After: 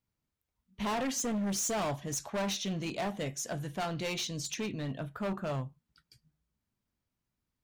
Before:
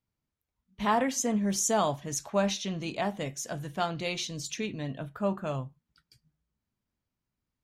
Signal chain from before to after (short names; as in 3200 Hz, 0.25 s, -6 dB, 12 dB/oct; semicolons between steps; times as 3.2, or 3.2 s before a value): hard clip -30 dBFS, distortion -7 dB